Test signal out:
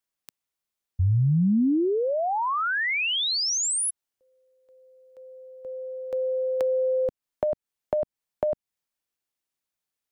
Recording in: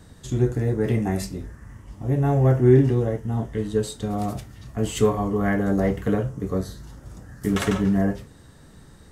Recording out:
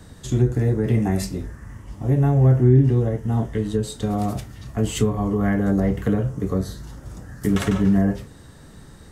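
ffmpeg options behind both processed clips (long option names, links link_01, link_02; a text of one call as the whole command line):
ffmpeg -i in.wav -filter_complex "[0:a]acrossover=split=260[link_01][link_02];[link_02]acompressor=threshold=-28dB:ratio=10[link_03];[link_01][link_03]amix=inputs=2:normalize=0,volume=4dB" out.wav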